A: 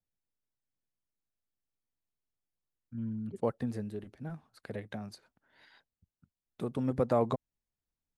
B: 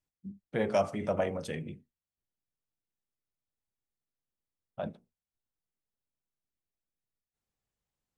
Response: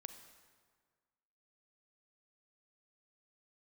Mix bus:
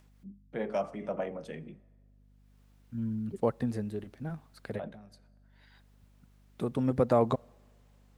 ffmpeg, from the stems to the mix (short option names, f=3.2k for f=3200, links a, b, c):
-filter_complex "[0:a]volume=2.5dB,asplit=2[a][b];[b]volume=-17.5dB[c];[1:a]highpass=f=150:w=0.5412,highpass=f=150:w=1.3066,highshelf=f=3.8k:g=-10.5,acompressor=mode=upward:threshold=-46dB:ratio=2.5,volume=-5.5dB,asplit=3[d][e][f];[e]volume=-8.5dB[g];[f]apad=whole_len=360470[h];[a][h]sidechaincompress=threshold=-58dB:ratio=5:attack=16:release=884[i];[2:a]atrim=start_sample=2205[j];[c][g]amix=inputs=2:normalize=0[k];[k][j]afir=irnorm=-1:irlink=0[l];[i][d][l]amix=inputs=3:normalize=0,aeval=exprs='val(0)+0.001*(sin(2*PI*50*n/s)+sin(2*PI*2*50*n/s)/2+sin(2*PI*3*50*n/s)/3+sin(2*PI*4*50*n/s)/4+sin(2*PI*5*50*n/s)/5)':c=same"